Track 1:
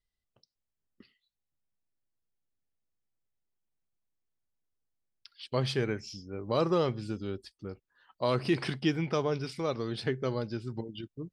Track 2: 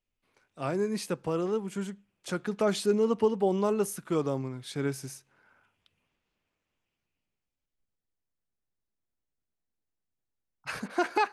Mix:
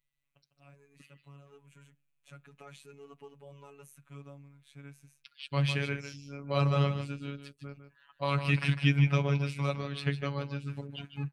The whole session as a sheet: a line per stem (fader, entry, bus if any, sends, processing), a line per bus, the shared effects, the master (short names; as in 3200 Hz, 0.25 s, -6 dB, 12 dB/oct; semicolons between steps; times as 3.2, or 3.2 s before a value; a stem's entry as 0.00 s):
+2.5 dB, 0.00 s, no send, echo send -10 dB, dry
-17.0 dB, 0.00 s, no send, no echo send, auto duck -7 dB, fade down 0.20 s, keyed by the first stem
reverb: off
echo: echo 0.152 s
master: thirty-one-band EQ 100 Hz -3 dB, 160 Hz +9 dB, 250 Hz -5 dB, 400 Hz -12 dB, 800 Hz -5 dB, 2500 Hz +10 dB, 5000 Hz -10 dB; robotiser 141 Hz